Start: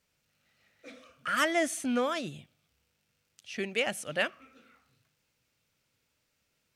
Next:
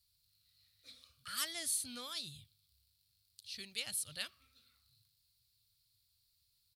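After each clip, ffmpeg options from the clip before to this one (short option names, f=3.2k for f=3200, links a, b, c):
-af "firequalizer=gain_entry='entry(100,0);entry(170,-18);entry(280,-25);entry(660,-27);entry(1100,-18);entry(1600,-20);entry(2800,-13);entry(4200,8);entry(6100,-9);entry(9900,4)':delay=0.05:min_phase=1,volume=1.5dB"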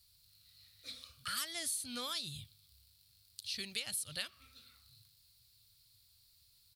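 -af "acompressor=threshold=-46dB:ratio=4,volume=9dB"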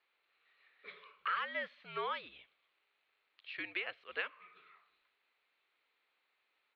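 -af "highpass=f=440:t=q:w=0.5412,highpass=f=440:t=q:w=1.307,lowpass=f=2.5k:t=q:w=0.5176,lowpass=f=2.5k:t=q:w=0.7071,lowpass=f=2.5k:t=q:w=1.932,afreqshift=-81,volume=8.5dB"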